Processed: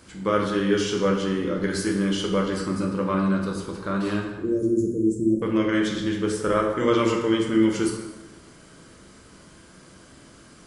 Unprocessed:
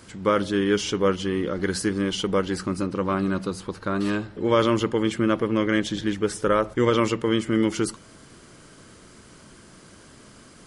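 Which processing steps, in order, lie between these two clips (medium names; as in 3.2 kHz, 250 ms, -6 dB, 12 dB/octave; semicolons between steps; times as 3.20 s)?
4.36–5.42 s: elliptic band-stop 370–7400 Hz, stop band 50 dB; plate-style reverb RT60 1.1 s, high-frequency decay 0.75×, DRR 0 dB; trim -3.5 dB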